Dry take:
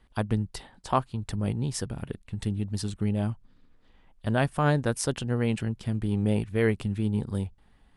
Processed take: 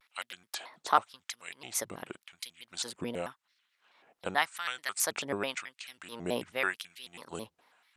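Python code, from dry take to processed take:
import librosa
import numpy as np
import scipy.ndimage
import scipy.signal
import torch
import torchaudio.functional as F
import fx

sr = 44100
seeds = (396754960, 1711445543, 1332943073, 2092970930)

y = fx.filter_lfo_highpass(x, sr, shape='sine', hz=0.9, low_hz=420.0, high_hz=2500.0, q=1.1)
y = fx.dynamic_eq(y, sr, hz=460.0, q=0.73, threshold_db=-44.0, ratio=4.0, max_db=-5)
y = fx.vibrato_shape(y, sr, shape='square', rate_hz=4.6, depth_cents=250.0)
y = y * 10.0 ** (2.5 / 20.0)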